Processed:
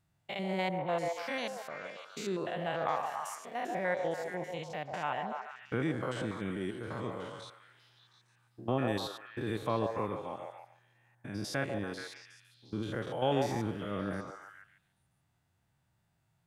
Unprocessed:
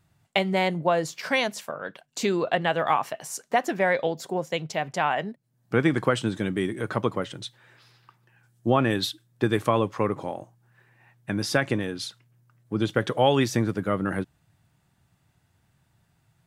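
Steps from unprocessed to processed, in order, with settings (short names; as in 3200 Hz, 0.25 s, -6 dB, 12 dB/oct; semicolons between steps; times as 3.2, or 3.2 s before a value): stepped spectrum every 0.1 s; delay with a stepping band-pass 0.143 s, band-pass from 650 Hz, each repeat 0.7 oct, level -2 dB; gain -8.5 dB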